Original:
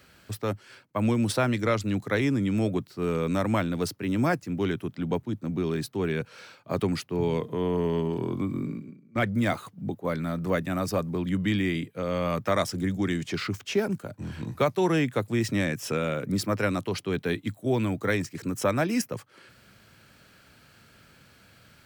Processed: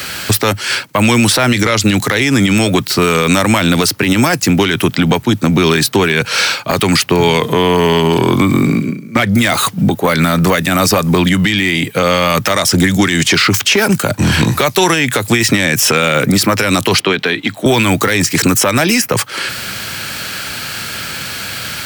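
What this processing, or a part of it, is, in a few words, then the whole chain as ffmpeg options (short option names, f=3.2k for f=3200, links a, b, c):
mastering chain: -filter_complex "[0:a]highpass=55,equalizer=f=840:t=o:w=0.27:g=2.5,acrossover=split=930|2400[a][b][c];[a]acompressor=threshold=-29dB:ratio=4[d];[b]acompressor=threshold=-37dB:ratio=4[e];[c]acompressor=threshold=-39dB:ratio=4[f];[d][e][f]amix=inputs=3:normalize=0,acompressor=threshold=-34dB:ratio=3,asoftclip=type=tanh:threshold=-26dB,tiltshelf=f=1.3k:g=-6,alimiter=level_in=33dB:limit=-1dB:release=50:level=0:latency=1,asettb=1/sr,asplit=3[g][h][i];[g]atrim=end=17.004[j];[h]atrim=start=17:end=17.66,asetpts=PTS-STARTPTS,afade=t=in:d=0.004:c=qsin,afade=t=out:st=0.656:d=0.004:c=qsin,acrossover=split=160 4800:gain=0.224 1 0.158[k][l][m];[k][l][m]amix=inputs=3:normalize=0[n];[i]atrim=start=17.656[o];[j][n]acrossfade=d=0.004:c1=hsin:c2=qsin[p];[p][o]acrossfade=d=0.004:c1=qsin:c2=hsin,volume=-1.5dB"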